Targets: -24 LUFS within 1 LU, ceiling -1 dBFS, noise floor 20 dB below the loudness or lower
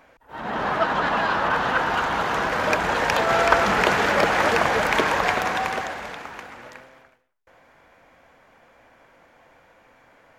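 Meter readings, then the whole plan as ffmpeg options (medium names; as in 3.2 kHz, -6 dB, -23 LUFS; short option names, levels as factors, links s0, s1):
loudness -21.5 LUFS; peak level -4.0 dBFS; loudness target -24.0 LUFS
-> -af "volume=0.75"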